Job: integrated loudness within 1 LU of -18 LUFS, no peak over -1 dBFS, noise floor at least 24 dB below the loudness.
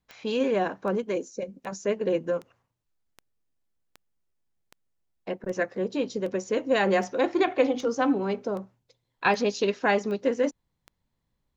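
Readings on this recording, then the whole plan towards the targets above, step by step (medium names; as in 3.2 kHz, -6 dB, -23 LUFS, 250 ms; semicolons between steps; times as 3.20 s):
clicks found 15; loudness -27.0 LUFS; peak level -8.5 dBFS; loudness target -18.0 LUFS
-> de-click; trim +9 dB; peak limiter -1 dBFS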